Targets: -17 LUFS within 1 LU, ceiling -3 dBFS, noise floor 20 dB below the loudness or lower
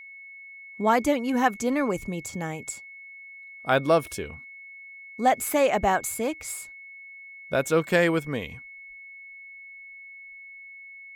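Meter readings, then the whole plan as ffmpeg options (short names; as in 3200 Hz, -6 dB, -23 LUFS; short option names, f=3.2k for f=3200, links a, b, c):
steady tone 2200 Hz; tone level -42 dBFS; loudness -25.5 LUFS; peak -7.5 dBFS; loudness target -17.0 LUFS
-> -af "bandreject=f=2.2k:w=30"
-af "volume=8.5dB,alimiter=limit=-3dB:level=0:latency=1"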